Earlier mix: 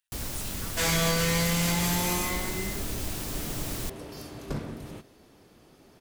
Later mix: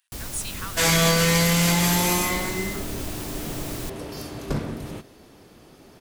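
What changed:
speech +11.5 dB; second sound +6.5 dB

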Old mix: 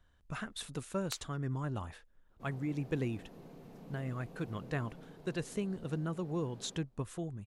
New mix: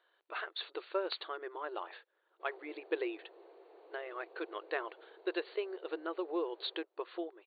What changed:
speech +3.5 dB; second sound: add bell 3500 Hz -5 dB 2.6 oct; master: add brick-wall FIR band-pass 320–4600 Hz

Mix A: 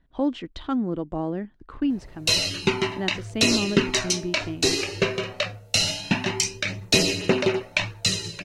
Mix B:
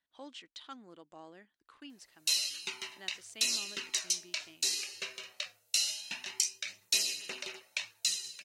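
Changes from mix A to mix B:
background -4.0 dB; master: add differentiator

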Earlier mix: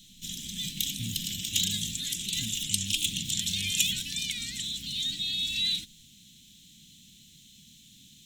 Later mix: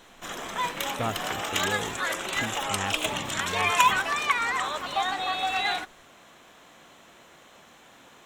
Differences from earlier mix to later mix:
background -5.5 dB; master: remove elliptic band-stop 200–3500 Hz, stop band 70 dB

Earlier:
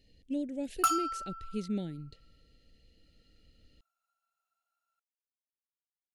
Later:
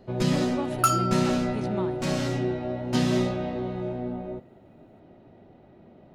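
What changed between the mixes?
speech: remove Butterworth band-stop 1100 Hz, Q 0.66; first sound: unmuted; second sound +5.0 dB

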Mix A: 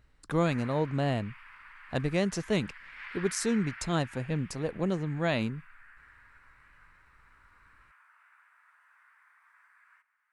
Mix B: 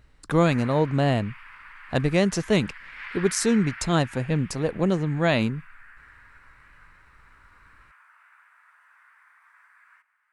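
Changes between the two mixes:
speech +7.0 dB; background +5.5 dB

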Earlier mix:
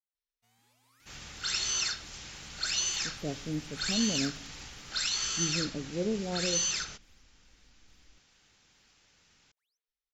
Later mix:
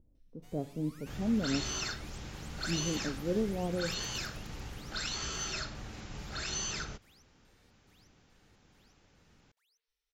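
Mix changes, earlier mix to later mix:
speech: entry -2.70 s; first sound +9.0 dB; second sound: add tilt shelf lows +8.5 dB, about 1300 Hz

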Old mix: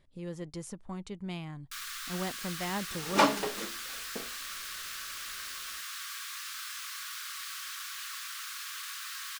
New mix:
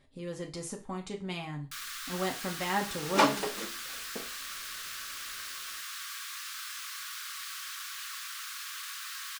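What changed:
speech: send on; master: add low shelf 76 Hz -6.5 dB

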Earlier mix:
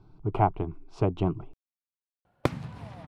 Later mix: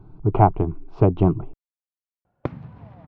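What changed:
speech +10.0 dB; master: add tape spacing loss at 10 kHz 37 dB

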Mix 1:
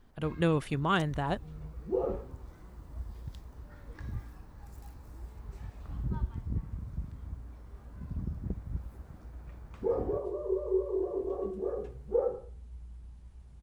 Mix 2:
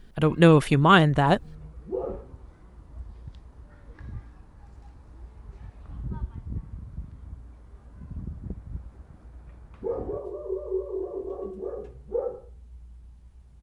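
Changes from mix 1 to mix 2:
speech +11.5 dB; first sound: add air absorption 120 m

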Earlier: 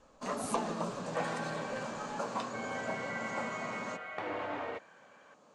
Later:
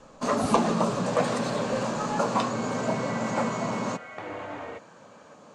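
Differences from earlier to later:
first sound +10.5 dB; master: add low shelf 160 Hz +9 dB

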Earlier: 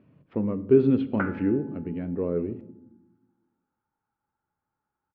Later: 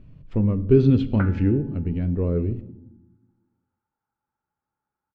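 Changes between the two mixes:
speech: remove BPF 240–2200 Hz; background: send -11.0 dB

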